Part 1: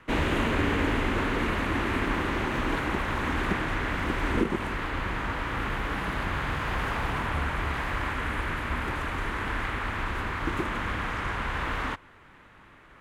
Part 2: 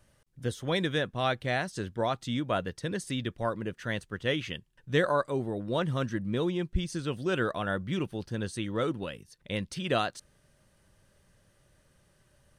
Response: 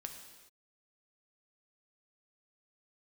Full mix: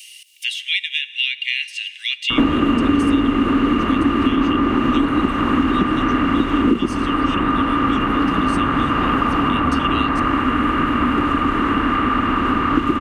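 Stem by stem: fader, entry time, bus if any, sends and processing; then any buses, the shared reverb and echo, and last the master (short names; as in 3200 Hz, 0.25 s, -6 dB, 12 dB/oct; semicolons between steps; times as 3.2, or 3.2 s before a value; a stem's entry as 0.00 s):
+2.5 dB, 2.30 s, no send, high shelf 3000 Hz -8.5 dB
-1.0 dB, 0.00 s, send -4.5 dB, steep high-pass 2200 Hz 72 dB/oct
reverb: on, pre-delay 3 ms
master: small resonant body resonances 270/1200/2800 Hz, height 17 dB, ringing for 40 ms; three-band squash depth 100%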